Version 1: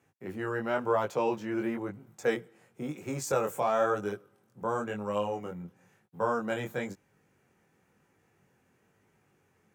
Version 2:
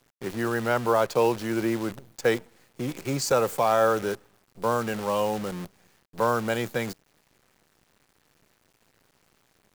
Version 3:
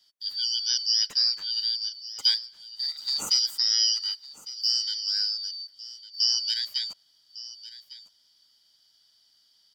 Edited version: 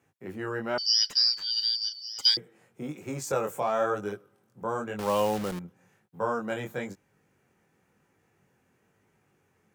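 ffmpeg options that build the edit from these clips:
ffmpeg -i take0.wav -i take1.wav -i take2.wav -filter_complex "[0:a]asplit=3[link_01][link_02][link_03];[link_01]atrim=end=0.782[link_04];[2:a]atrim=start=0.778:end=2.372[link_05];[link_02]atrim=start=2.368:end=4.992[link_06];[1:a]atrim=start=4.988:end=5.592[link_07];[link_03]atrim=start=5.588[link_08];[link_04][link_05]acrossfade=duration=0.004:curve1=hsin:curve2=hsin[link_09];[link_09][link_06]acrossfade=duration=0.004:curve1=hsin:curve2=hsin[link_10];[link_10][link_07]acrossfade=duration=0.004:curve1=hsin:curve2=hsin[link_11];[link_11][link_08]acrossfade=duration=0.004:curve1=hsin:curve2=hsin" out.wav

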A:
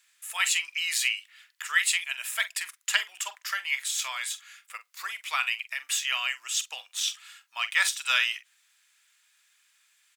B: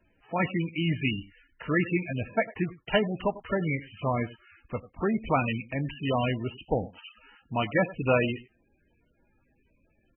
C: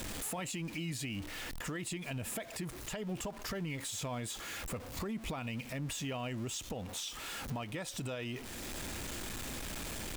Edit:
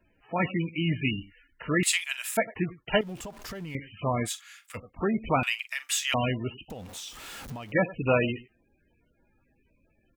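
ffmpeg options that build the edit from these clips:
ffmpeg -i take0.wav -i take1.wav -i take2.wav -filter_complex "[0:a]asplit=3[link_01][link_02][link_03];[2:a]asplit=2[link_04][link_05];[1:a]asplit=6[link_06][link_07][link_08][link_09][link_10][link_11];[link_06]atrim=end=1.832[link_12];[link_01]atrim=start=1.828:end=2.372[link_13];[link_07]atrim=start=2.368:end=3.012[link_14];[link_04]atrim=start=3.008:end=3.752[link_15];[link_08]atrim=start=3.748:end=4.29[link_16];[link_02]atrim=start=4.25:end=4.78[link_17];[link_09]atrim=start=4.74:end=5.432[link_18];[link_03]atrim=start=5.428:end=6.142[link_19];[link_10]atrim=start=6.138:end=6.702[link_20];[link_05]atrim=start=6.698:end=7.722[link_21];[link_11]atrim=start=7.718[link_22];[link_12][link_13]acrossfade=duration=0.004:curve1=hsin:curve2=hsin[link_23];[link_23][link_14]acrossfade=duration=0.004:curve1=hsin:curve2=hsin[link_24];[link_24][link_15]acrossfade=duration=0.004:curve1=hsin:curve2=hsin[link_25];[link_25][link_16]acrossfade=duration=0.004:curve1=hsin:curve2=hsin[link_26];[link_26][link_17]acrossfade=duration=0.04:curve1=tri:curve2=tri[link_27];[link_27][link_18]acrossfade=duration=0.04:curve1=tri:curve2=tri[link_28];[link_28][link_19]acrossfade=duration=0.004:curve1=hsin:curve2=hsin[link_29];[link_29][link_20]acrossfade=duration=0.004:curve1=hsin:curve2=hsin[link_30];[link_30][link_21]acrossfade=duration=0.004:curve1=hsin:curve2=hsin[link_31];[link_31][link_22]acrossfade=duration=0.004:curve1=hsin:curve2=hsin" out.wav

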